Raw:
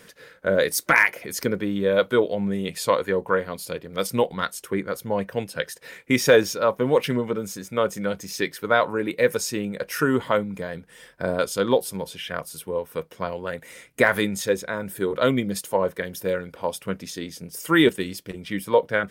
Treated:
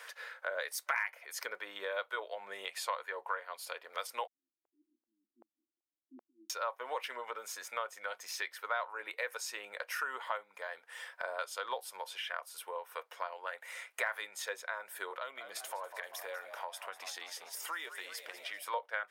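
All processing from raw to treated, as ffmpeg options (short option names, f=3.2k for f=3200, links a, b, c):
-filter_complex "[0:a]asettb=1/sr,asplit=3[a][b][c];[a]atrim=end=4.274[d];[b]atrim=start=4.27:end=6.5,asetpts=PTS-STARTPTS,afade=t=in:d=0.004:c=qsin,afade=t=out:st=2.226:d=0.004:c=qsin,asuperpass=centerf=270:order=20:qfactor=2,aeval=exprs='val(0)*pow(10,-27*if(lt(mod(-2.6*n/s,1),2*abs(-2.6)/1000),1-mod(-2.6*n/s,1)/(2*abs(-2.6)/1000),(mod(-2.6*n/s,1)-2*abs(-2.6)/1000)/(1-2*abs(-2.6)/1000))/20)':c=same[e];[c]atrim=start=6.496[f];[d][e]acrossfade=d=0.004:c1=hsin:c2=qsin[g];[g][f]acrossfade=d=0.004:c1=qsin:c2=hsin,asettb=1/sr,asplit=3[h][i][j];[h]atrim=end=15.154[k];[i]atrim=start=15.15:end=18.63,asetpts=PTS-STARTPTS,afade=t=in:d=0.004:c=qsin,afade=t=out:st=3.476:d=0.004:c=qsin,acompressor=threshold=-33dB:ratio=2.5:attack=3.2:release=140:knee=1:detection=peak,asplit=7[l][m][n][o][p][q][r];[m]adelay=195,afreqshift=69,volume=-14.5dB[s];[n]adelay=390,afreqshift=138,volume=-19.1dB[t];[o]adelay=585,afreqshift=207,volume=-23.7dB[u];[p]adelay=780,afreqshift=276,volume=-28.2dB[v];[q]adelay=975,afreqshift=345,volume=-32.8dB[w];[r]adelay=1170,afreqshift=414,volume=-37.4dB[x];[l][s][t][u][v][w][x]amix=inputs=7:normalize=0,atrim=end_sample=153468[y];[j]atrim=start=18.626[z];[k][y]acrossfade=d=0.004:c1=hsin:c2=qsin[aa];[aa][z]acrossfade=d=0.004:c1=qsin:c2=hsin,highpass=f=760:w=0.5412,highpass=f=760:w=1.3066,highshelf=f=3k:g=-10.5,acompressor=threshold=-48dB:ratio=2.5,volume=6.5dB"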